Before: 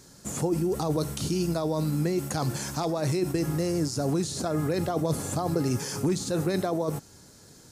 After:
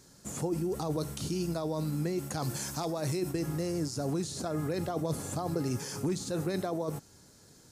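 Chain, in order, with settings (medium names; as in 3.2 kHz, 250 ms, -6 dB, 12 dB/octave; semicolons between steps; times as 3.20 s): 2.42–3.29 s: treble shelf 5.1 kHz -> 8.4 kHz +6.5 dB; trim -5.5 dB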